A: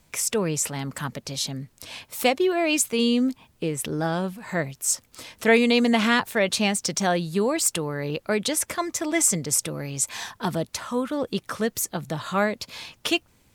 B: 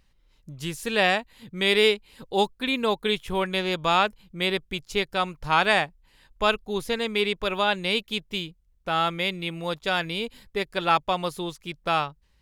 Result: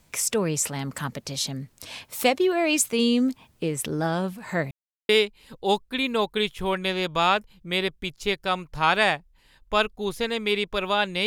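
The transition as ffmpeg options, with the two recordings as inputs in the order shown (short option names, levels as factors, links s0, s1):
-filter_complex "[0:a]apad=whole_dur=11.26,atrim=end=11.26,asplit=2[s0][s1];[s0]atrim=end=4.71,asetpts=PTS-STARTPTS,afade=t=out:st=4.706:d=0.004:c=hsin[s2];[s1]atrim=start=4.71:end=5.09,asetpts=PTS-STARTPTS,volume=0[s3];[1:a]atrim=start=1.78:end=7.95,asetpts=PTS-STARTPTS,afade=t=in:d=0.004:c=hsin[s4];[s2][s3][s4]concat=n=3:v=0:a=1"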